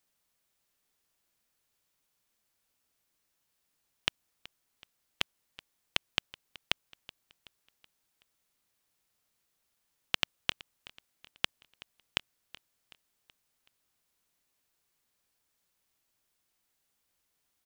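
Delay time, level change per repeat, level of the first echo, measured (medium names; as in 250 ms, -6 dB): 376 ms, -6.5 dB, -20.0 dB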